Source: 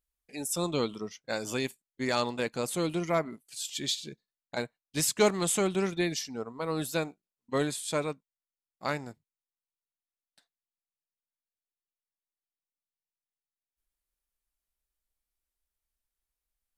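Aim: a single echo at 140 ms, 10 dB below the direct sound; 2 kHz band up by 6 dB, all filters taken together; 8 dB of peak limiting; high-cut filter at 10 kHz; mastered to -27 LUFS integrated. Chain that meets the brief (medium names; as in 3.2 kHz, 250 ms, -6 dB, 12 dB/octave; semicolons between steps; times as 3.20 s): low-pass 10 kHz; peaking EQ 2 kHz +7.5 dB; peak limiter -19.5 dBFS; delay 140 ms -10 dB; trim +5 dB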